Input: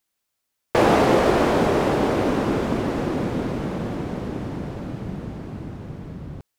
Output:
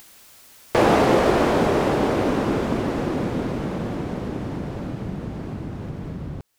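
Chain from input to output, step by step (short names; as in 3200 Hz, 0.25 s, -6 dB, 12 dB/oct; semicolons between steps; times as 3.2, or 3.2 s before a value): upward compressor, threshold -25 dBFS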